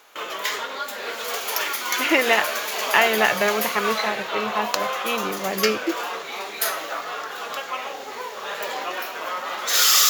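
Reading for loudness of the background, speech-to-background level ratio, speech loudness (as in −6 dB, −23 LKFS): −25.5 LKFS, 2.5 dB, −23.0 LKFS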